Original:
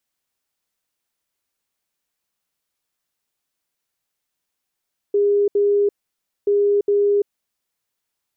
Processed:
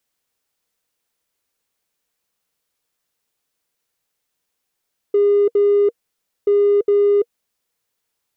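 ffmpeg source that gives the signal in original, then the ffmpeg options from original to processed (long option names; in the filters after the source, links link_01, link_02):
-f lavfi -i "aevalsrc='0.211*sin(2*PI*407*t)*clip(min(mod(mod(t,1.33),0.41),0.34-mod(mod(t,1.33),0.41))/0.005,0,1)*lt(mod(t,1.33),0.82)':duration=2.66:sample_rate=44100"
-filter_complex "[0:a]equalizer=frequency=470:width_type=o:width=0.22:gain=6,asplit=2[link_01][link_02];[link_02]asoftclip=type=tanh:threshold=-24.5dB,volume=-7dB[link_03];[link_01][link_03]amix=inputs=2:normalize=0"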